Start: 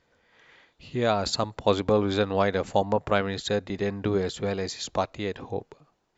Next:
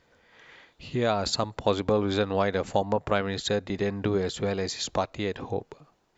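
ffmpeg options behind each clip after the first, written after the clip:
-af "acompressor=threshold=-34dB:ratio=1.5,volume=4dB"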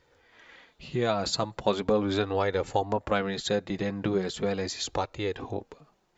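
-af "flanger=delay=2.2:depth=4:regen=-28:speed=0.39:shape=sinusoidal,volume=2.5dB"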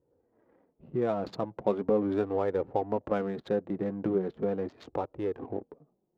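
-af "adynamicsmooth=sensitivity=6.5:basefreq=510,bandpass=f=340:t=q:w=0.66:csg=0"

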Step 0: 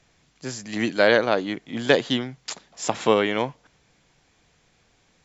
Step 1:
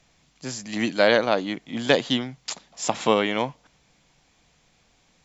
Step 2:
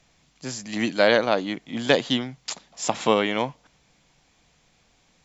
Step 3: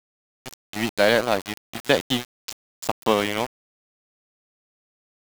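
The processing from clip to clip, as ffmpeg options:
-af "equalizer=f=100:t=o:w=0.67:g=-5,equalizer=f=400:t=o:w=0.67:g=-5,equalizer=f=1.6k:t=o:w=0.67:g=-4,volume=1.5dB"
-af anull
-af "aeval=exprs='val(0)*gte(abs(val(0)),0.0668)':c=same"

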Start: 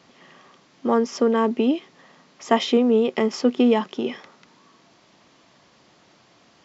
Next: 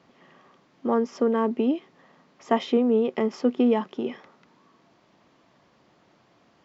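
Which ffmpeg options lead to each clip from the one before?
-af "highshelf=f=2.9k:g=-11.5,volume=-3dB"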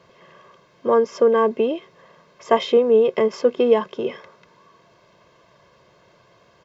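-af "aecho=1:1:1.9:0.76,volume=4.5dB"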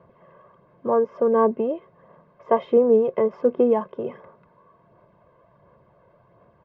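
-af "lowpass=1k,equalizer=f=390:w=1.8:g=-4,aphaser=in_gain=1:out_gain=1:delay=2:decay=0.3:speed=1.4:type=sinusoidal"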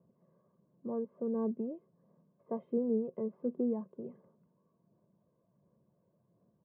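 -af "bandpass=f=210:t=q:w=1.8:csg=0,volume=-7.5dB"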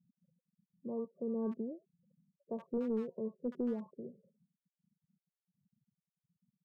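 -filter_complex "[0:a]afftfilt=real='re*gte(hypot(re,im),0.00251)':imag='im*gte(hypot(re,im),0.00251)':win_size=1024:overlap=0.75,asoftclip=type=hard:threshold=-26.5dB,acrossover=split=1000[a][b];[b]adelay=70[c];[a][c]amix=inputs=2:normalize=0,volume=-2.5dB"

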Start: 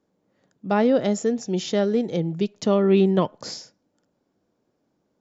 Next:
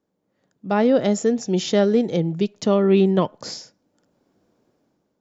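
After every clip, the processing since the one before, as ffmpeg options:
-af "dynaudnorm=f=200:g=7:m=11.5dB,volume=-4dB"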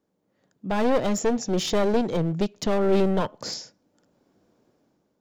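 -af "acontrast=61,aeval=exprs='clip(val(0),-1,0.112)':c=same,volume=-6dB"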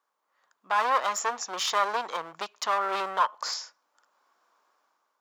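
-af "highpass=f=1.1k:t=q:w=3.7"

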